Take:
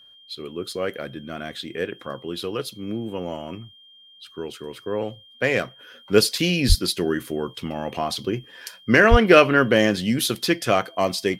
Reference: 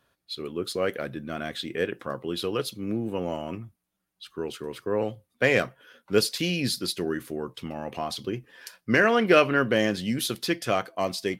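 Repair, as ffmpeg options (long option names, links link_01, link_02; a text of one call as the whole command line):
ffmpeg -i in.wav -filter_complex "[0:a]bandreject=frequency=3200:width=30,asplit=3[link_01][link_02][link_03];[link_01]afade=type=out:start_time=6.68:duration=0.02[link_04];[link_02]highpass=frequency=140:width=0.5412,highpass=frequency=140:width=1.3066,afade=type=in:start_time=6.68:duration=0.02,afade=type=out:start_time=6.8:duration=0.02[link_05];[link_03]afade=type=in:start_time=6.8:duration=0.02[link_06];[link_04][link_05][link_06]amix=inputs=3:normalize=0,asplit=3[link_07][link_08][link_09];[link_07]afade=type=out:start_time=9.1:duration=0.02[link_10];[link_08]highpass=frequency=140:width=0.5412,highpass=frequency=140:width=1.3066,afade=type=in:start_time=9.1:duration=0.02,afade=type=out:start_time=9.22:duration=0.02[link_11];[link_09]afade=type=in:start_time=9.22:duration=0.02[link_12];[link_10][link_11][link_12]amix=inputs=3:normalize=0,asetnsamples=nb_out_samples=441:pad=0,asendcmd='5.79 volume volume -5.5dB',volume=0dB" out.wav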